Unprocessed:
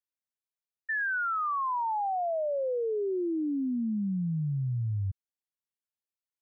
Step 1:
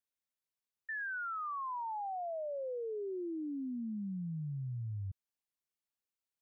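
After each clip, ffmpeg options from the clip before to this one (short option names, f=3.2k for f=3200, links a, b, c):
-af "alimiter=level_in=11dB:limit=-24dB:level=0:latency=1:release=12,volume=-11dB,volume=-1dB"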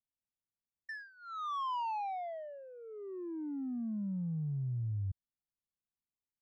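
-af "aecho=1:1:1:0.68,adynamicsmooth=sensitivity=4.5:basefreq=550"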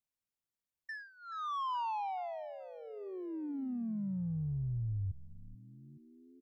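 -filter_complex "[0:a]asplit=6[a][b][c][d][e][f];[b]adelay=428,afreqshift=-120,volume=-15dB[g];[c]adelay=856,afreqshift=-240,volume=-20.4dB[h];[d]adelay=1284,afreqshift=-360,volume=-25.7dB[i];[e]adelay=1712,afreqshift=-480,volume=-31.1dB[j];[f]adelay=2140,afreqshift=-600,volume=-36.4dB[k];[a][g][h][i][j][k]amix=inputs=6:normalize=0"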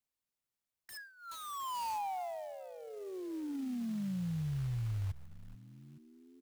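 -filter_complex "[0:a]acrossover=split=240|1200[a][b][c];[c]aeval=exprs='(mod(168*val(0)+1,2)-1)/168':c=same[d];[a][b][d]amix=inputs=3:normalize=0,acrusher=bits=5:mode=log:mix=0:aa=0.000001"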